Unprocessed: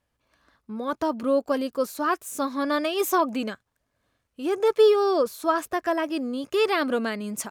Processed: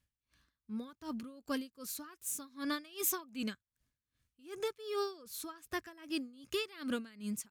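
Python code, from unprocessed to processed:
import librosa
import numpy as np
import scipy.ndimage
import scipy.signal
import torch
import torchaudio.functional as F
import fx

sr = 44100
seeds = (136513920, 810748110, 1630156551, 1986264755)

y = fx.tone_stack(x, sr, knobs='6-0-2')
y = fx.hum_notches(y, sr, base_hz=50, count=2)
y = y * 10.0 ** (-22 * (0.5 - 0.5 * np.cos(2.0 * np.pi * 2.6 * np.arange(len(y)) / sr)) / 20.0)
y = y * librosa.db_to_amplitude(14.0)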